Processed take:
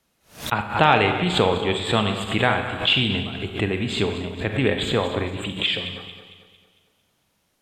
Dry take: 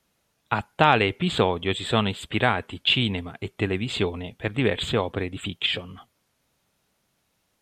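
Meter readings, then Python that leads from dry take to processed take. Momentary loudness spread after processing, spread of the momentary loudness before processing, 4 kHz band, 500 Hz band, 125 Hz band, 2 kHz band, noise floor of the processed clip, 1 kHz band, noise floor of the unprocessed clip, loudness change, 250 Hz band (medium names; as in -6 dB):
10 LU, 10 LU, +3.0 dB, +2.5 dB, +2.0 dB, +3.0 dB, -69 dBFS, +2.5 dB, -72 dBFS, +2.5 dB, +2.5 dB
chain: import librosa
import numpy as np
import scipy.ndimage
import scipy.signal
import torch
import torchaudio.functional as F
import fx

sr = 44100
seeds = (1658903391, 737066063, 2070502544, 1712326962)

y = fx.reverse_delay_fb(x, sr, ms=113, feedback_pct=65, wet_db=-11.0)
y = fx.rev_schroeder(y, sr, rt60_s=0.92, comb_ms=30, drr_db=7.0)
y = fx.pre_swell(y, sr, db_per_s=150.0)
y = y * librosa.db_to_amplitude(1.0)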